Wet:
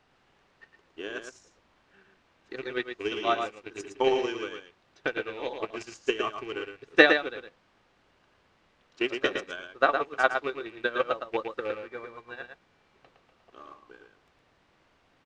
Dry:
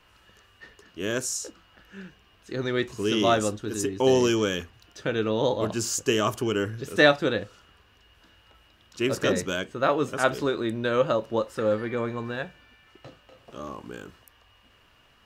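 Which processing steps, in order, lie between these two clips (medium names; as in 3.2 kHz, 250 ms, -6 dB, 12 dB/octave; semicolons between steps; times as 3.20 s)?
rattle on loud lows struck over -30 dBFS, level -24 dBFS; high-pass 1.4 kHz 6 dB/octave; treble shelf 4.8 kHz +6.5 dB; comb 2.6 ms, depth 38%; transient shaper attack +11 dB, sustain -4 dB; in parallel at -5 dB: word length cut 6-bit, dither triangular; on the sum: tape spacing loss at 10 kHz 38 dB; delay 112 ms -4.5 dB; upward expansion 1.5:1, over -44 dBFS; trim +1.5 dB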